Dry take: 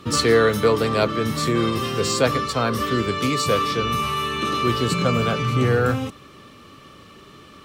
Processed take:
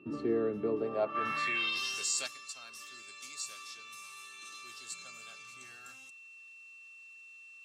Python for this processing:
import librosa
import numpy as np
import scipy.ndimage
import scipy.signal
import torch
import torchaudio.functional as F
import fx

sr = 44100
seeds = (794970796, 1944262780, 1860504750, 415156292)

y = fx.notch_comb(x, sr, f0_hz=490.0)
y = y + 10.0 ** (-29.0 / 20.0) * np.sin(2.0 * np.pi * 2700.0 * np.arange(len(y)) / sr)
y = fx.filter_sweep_bandpass(y, sr, from_hz=340.0, to_hz=7300.0, start_s=0.74, end_s=1.99, q=2.0)
y = fx.env_flatten(y, sr, amount_pct=50, at=(1.14, 2.26), fade=0.02)
y = y * 10.0 ** (-7.0 / 20.0)